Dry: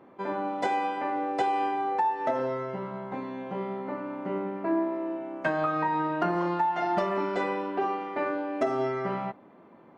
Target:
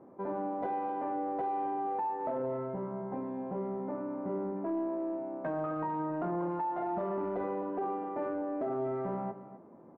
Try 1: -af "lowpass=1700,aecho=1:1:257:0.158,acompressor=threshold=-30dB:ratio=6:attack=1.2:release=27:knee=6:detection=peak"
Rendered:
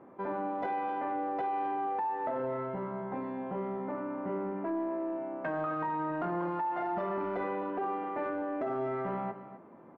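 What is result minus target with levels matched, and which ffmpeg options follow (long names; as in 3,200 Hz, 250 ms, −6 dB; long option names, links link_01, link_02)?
2,000 Hz band +7.0 dB
-af "lowpass=830,aecho=1:1:257:0.158,acompressor=threshold=-30dB:ratio=6:attack=1.2:release=27:knee=6:detection=peak"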